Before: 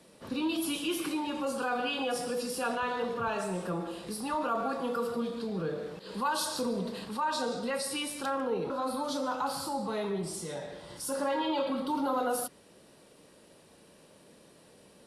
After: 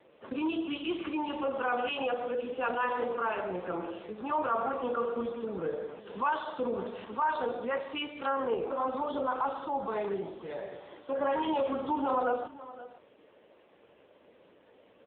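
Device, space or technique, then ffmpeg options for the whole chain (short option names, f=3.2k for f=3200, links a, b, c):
satellite phone: -af "highpass=310,lowpass=3.3k,aecho=1:1:521:0.141,volume=3dB" -ar 8000 -c:a libopencore_amrnb -b:a 5900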